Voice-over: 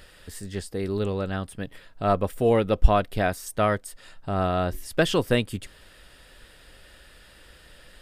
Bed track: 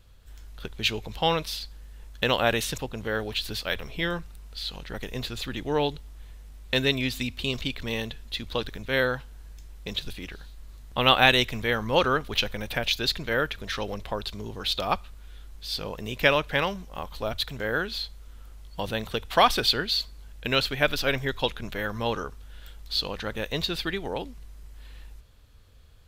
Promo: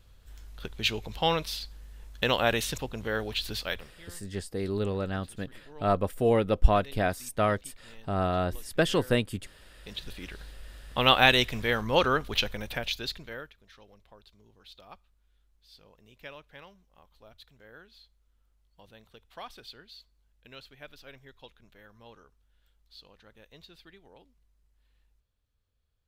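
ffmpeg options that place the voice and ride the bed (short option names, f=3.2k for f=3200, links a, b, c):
-filter_complex "[0:a]adelay=3800,volume=-3dB[a];[1:a]volume=20dB,afade=t=out:st=3.64:d=0.31:silence=0.0841395,afade=t=in:st=9.62:d=0.79:silence=0.0794328,afade=t=out:st=12.36:d=1.18:silence=0.0749894[b];[a][b]amix=inputs=2:normalize=0"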